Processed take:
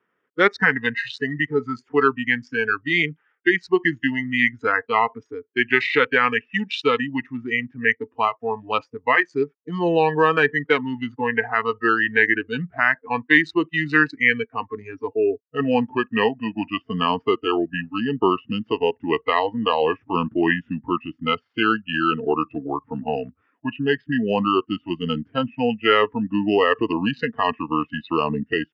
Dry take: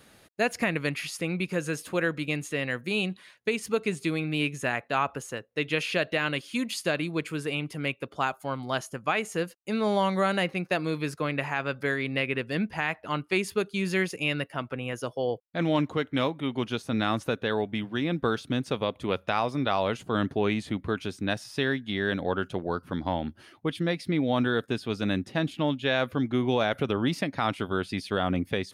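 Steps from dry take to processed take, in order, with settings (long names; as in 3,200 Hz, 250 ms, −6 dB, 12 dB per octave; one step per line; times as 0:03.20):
adaptive Wiener filter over 9 samples
noise reduction from a noise print of the clip's start 23 dB
pitch shifter −3.5 semitones
loudspeaker in its box 250–4,600 Hz, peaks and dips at 430 Hz +5 dB, 620 Hz −6 dB, 1,300 Hz +4 dB, 1,800 Hz +9 dB, 3,600 Hz +5 dB
level +8 dB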